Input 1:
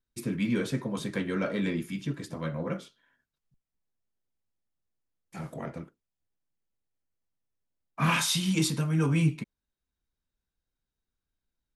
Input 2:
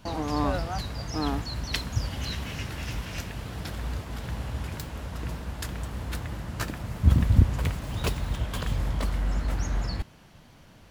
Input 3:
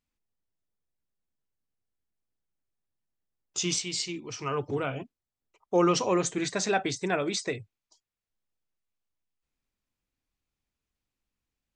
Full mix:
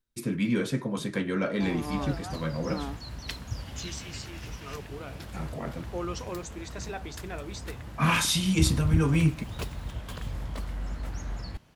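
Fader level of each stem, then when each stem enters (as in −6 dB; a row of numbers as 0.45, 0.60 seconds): +1.5, −7.0, −11.5 decibels; 0.00, 1.55, 0.20 seconds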